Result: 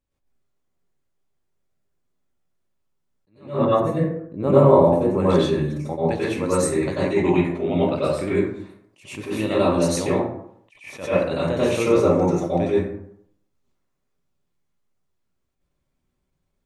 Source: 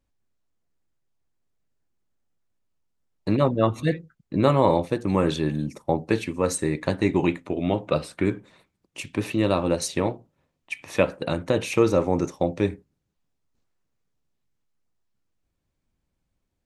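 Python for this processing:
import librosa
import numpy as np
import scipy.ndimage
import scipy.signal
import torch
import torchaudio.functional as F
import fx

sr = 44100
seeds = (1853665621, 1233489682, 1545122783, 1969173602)

y = fx.graphic_eq(x, sr, hz=(500, 2000, 4000, 8000), db=(3, -8, -10, -3), at=(3.65, 5.2))
y = fx.rev_plate(y, sr, seeds[0], rt60_s=0.69, hf_ratio=0.5, predelay_ms=80, drr_db=-9.0)
y = fx.attack_slew(y, sr, db_per_s=150.0)
y = F.gain(torch.from_numpy(y), -6.0).numpy()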